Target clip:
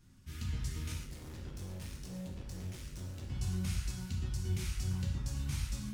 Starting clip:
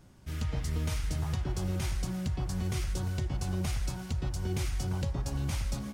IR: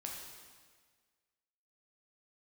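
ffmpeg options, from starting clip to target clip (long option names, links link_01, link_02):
-filter_complex "[0:a]equalizer=frequency=610:width=0.87:gain=-14.5,asettb=1/sr,asplit=3[link_01][link_02][link_03];[link_01]atrim=end=0.924[link_04];[link_02]atrim=start=0.92:end=3.29,asetpts=PTS-STARTPTS,afade=type=in:duration=0.004:curve=qsin,afade=type=out:start_time=2.366:duration=0.004:curve=qsin,asoftclip=type=hard:threshold=-39.5dB[link_05];[link_03]atrim=start=3.286[link_06];[link_04][link_05]acrossfade=duration=0.004:curve1=hsin:curve2=qsin[link_07];[link_07][link_06]acrossfade=duration=0.004:curve1=qsin:curve2=hsin[link_08];[1:a]atrim=start_sample=2205,afade=type=out:start_time=0.29:duration=0.01,atrim=end_sample=13230,asetrate=70560,aresample=44100[link_09];[link_08][link_09]afir=irnorm=-1:irlink=0,volume=3.5dB"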